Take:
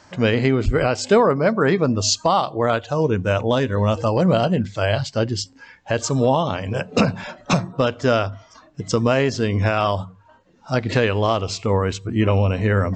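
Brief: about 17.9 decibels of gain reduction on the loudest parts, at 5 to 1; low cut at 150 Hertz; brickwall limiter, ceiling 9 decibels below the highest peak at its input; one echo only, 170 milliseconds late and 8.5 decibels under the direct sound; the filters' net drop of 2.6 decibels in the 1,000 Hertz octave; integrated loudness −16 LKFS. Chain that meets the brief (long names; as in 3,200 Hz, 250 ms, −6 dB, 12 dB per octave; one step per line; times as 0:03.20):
high-pass filter 150 Hz
parametric band 1,000 Hz −3.5 dB
downward compressor 5 to 1, threshold −33 dBFS
brickwall limiter −25.5 dBFS
single-tap delay 170 ms −8.5 dB
level +21 dB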